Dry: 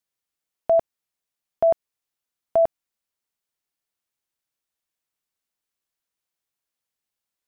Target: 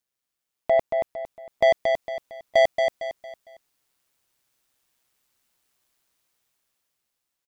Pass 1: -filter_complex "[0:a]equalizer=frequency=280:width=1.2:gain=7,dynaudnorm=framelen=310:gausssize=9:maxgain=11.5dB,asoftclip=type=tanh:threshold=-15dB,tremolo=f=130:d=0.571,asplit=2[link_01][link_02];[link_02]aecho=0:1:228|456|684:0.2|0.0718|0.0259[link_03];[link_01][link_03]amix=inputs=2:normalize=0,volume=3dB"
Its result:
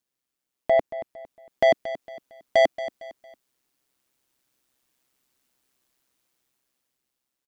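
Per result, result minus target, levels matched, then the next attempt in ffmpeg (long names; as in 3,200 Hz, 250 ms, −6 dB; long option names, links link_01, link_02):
echo-to-direct −9 dB; 250 Hz band +5.0 dB
-filter_complex "[0:a]equalizer=frequency=280:width=1.2:gain=7,dynaudnorm=framelen=310:gausssize=9:maxgain=11.5dB,asoftclip=type=tanh:threshold=-15dB,tremolo=f=130:d=0.571,asplit=2[link_01][link_02];[link_02]aecho=0:1:228|456|684|912:0.562|0.202|0.0729|0.0262[link_03];[link_01][link_03]amix=inputs=2:normalize=0,volume=3dB"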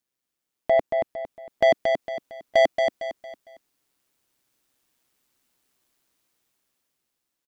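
250 Hz band +6.5 dB
-filter_complex "[0:a]dynaudnorm=framelen=310:gausssize=9:maxgain=11.5dB,asoftclip=type=tanh:threshold=-15dB,tremolo=f=130:d=0.571,asplit=2[link_01][link_02];[link_02]aecho=0:1:228|456|684|912:0.562|0.202|0.0729|0.0262[link_03];[link_01][link_03]amix=inputs=2:normalize=0,volume=3dB"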